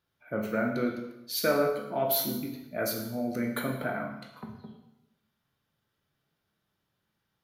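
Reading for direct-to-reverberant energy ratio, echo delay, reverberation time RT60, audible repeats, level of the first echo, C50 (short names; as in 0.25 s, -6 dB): 2.0 dB, none, 0.90 s, none, none, 5.5 dB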